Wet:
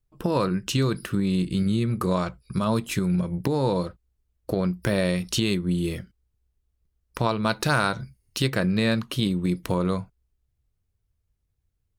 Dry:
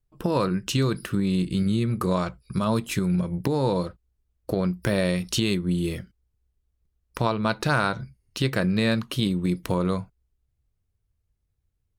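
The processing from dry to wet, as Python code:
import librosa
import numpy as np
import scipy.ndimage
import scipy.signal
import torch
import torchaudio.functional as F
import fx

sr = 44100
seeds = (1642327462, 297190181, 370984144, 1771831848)

y = fx.high_shelf(x, sr, hz=5300.0, db=8.0, at=(7.29, 8.48))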